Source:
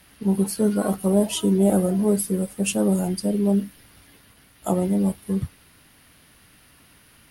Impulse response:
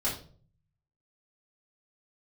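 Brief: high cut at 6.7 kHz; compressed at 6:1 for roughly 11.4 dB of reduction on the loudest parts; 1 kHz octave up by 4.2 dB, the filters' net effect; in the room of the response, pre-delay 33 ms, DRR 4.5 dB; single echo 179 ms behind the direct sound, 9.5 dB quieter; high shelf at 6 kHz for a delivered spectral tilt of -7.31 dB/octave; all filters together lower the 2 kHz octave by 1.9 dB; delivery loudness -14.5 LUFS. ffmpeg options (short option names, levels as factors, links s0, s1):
-filter_complex "[0:a]lowpass=6700,equalizer=f=1000:t=o:g=7,equalizer=f=2000:t=o:g=-4.5,highshelf=f=6000:g=-5.5,acompressor=threshold=0.0447:ratio=6,aecho=1:1:179:0.335,asplit=2[s0][s1];[1:a]atrim=start_sample=2205,adelay=33[s2];[s1][s2]afir=irnorm=-1:irlink=0,volume=0.266[s3];[s0][s3]amix=inputs=2:normalize=0,volume=5.01"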